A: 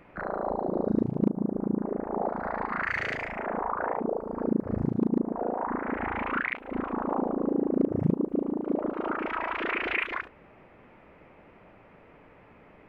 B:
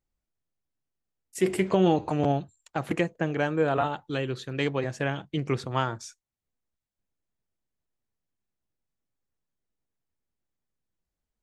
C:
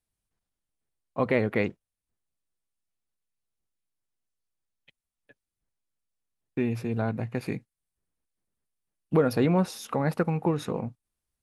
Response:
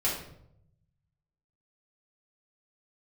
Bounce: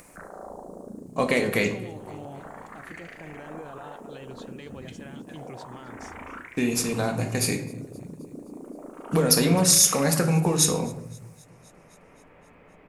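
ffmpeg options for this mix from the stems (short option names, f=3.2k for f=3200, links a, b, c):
-filter_complex "[0:a]alimiter=limit=-24dB:level=0:latency=1:release=411,volume=-9dB,asplit=2[a][b];[b]volume=-12.5dB[c];[1:a]volume=-11dB,asplit=2[d][e];[e]volume=-17.5dB[f];[2:a]equalizer=f=7.1k:t=o:w=1.2:g=13.5,acompressor=threshold=-22dB:ratio=6,highshelf=f=3.9k:g=12,volume=-0.5dB,asplit=3[g][h][i];[h]volume=-8.5dB[j];[i]volume=-23dB[k];[a][d]amix=inputs=2:normalize=0,alimiter=level_in=8dB:limit=-24dB:level=0:latency=1,volume=-8dB,volume=0dB[l];[3:a]atrim=start_sample=2205[m];[c][j]amix=inputs=2:normalize=0[n];[n][m]afir=irnorm=-1:irlink=0[o];[f][k]amix=inputs=2:normalize=0,aecho=0:1:262|524|786|1048|1310|1572|1834|2096|2358:1|0.58|0.336|0.195|0.113|0.0656|0.0381|0.0221|0.0128[p];[g][l][o][p]amix=inputs=4:normalize=0,highshelf=f=5.3k:g=6,acompressor=mode=upward:threshold=-44dB:ratio=2.5"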